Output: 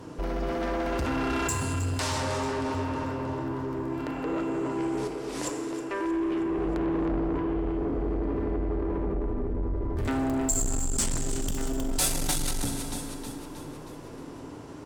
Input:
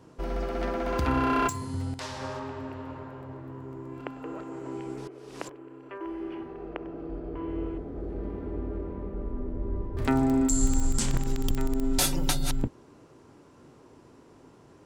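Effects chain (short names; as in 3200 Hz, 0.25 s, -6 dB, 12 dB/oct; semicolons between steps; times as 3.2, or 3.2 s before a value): in parallel at -1 dB: negative-ratio compressor -37 dBFS, ratio -1; 6.5–7.16 on the sum: low shelf 250 Hz +6.5 dB; on a send: feedback echo 0.315 s, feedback 56%, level -11.5 dB; on the sum: FDN reverb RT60 2.2 s, low-frequency decay 1×, high-frequency decay 0.85×, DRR 5 dB; soft clip -25 dBFS, distortion -11 dB; dynamic EQ 8400 Hz, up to +7 dB, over -53 dBFS, Q 1.4; gain +1 dB; AAC 96 kbps 44100 Hz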